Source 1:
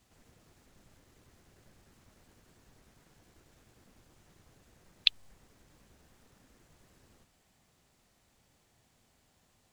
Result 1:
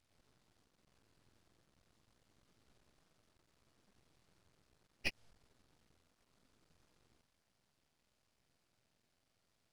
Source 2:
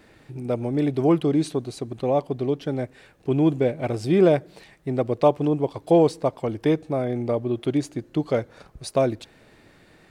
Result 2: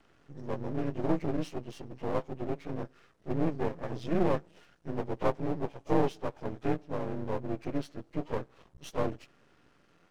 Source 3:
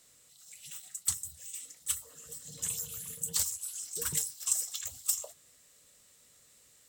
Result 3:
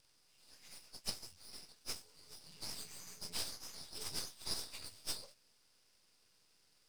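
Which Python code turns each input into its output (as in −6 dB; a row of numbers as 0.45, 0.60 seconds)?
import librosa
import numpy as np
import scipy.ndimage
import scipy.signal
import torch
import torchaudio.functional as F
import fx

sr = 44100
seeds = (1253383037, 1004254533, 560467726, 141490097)

y = fx.partial_stretch(x, sr, pct=87)
y = np.maximum(y, 0.0)
y = y * librosa.db_to_amplitude(-4.5)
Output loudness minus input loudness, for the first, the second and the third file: −13.0, −11.0, −11.0 LU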